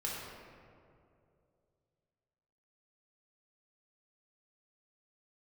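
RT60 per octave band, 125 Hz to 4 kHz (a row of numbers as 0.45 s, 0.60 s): 3.2 s, 2.7 s, 2.9 s, 2.2 s, 1.7 s, 1.1 s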